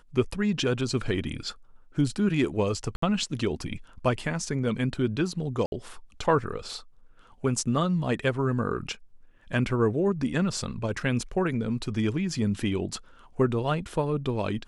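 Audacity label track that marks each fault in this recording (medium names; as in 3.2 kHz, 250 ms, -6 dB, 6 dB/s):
2.960000	3.020000	dropout 64 ms
5.660000	5.720000	dropout 61 ms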